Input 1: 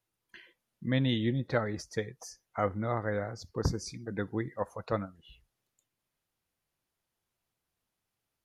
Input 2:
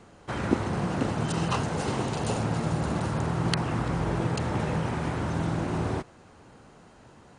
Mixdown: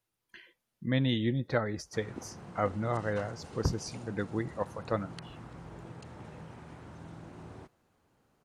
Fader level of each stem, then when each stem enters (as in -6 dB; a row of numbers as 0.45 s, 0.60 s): 0.0 dB, -19.0 dB; 0.00 s, 1.65 s